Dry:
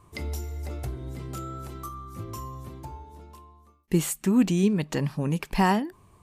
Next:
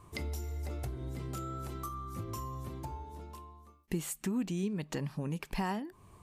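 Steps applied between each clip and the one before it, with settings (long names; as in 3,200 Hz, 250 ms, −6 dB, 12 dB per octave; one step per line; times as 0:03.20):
downward compressor 2.5 to 1, threshold −37 dBFS, peak gain reduction 14 dB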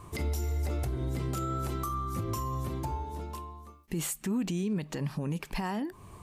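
brickwall limiter −32 dBFS, peak gain reduction 10.5 dB
level +8 dB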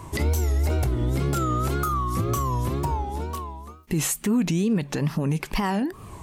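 tape wow and flutter 130 cents
level +8.5 dB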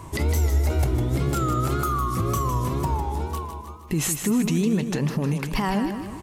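repeating echo 155 ms, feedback 49%, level −8 dB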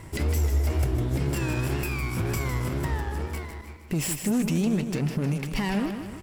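lower of the sound and its delayed copy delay 0.39 ms
level −2.5 dB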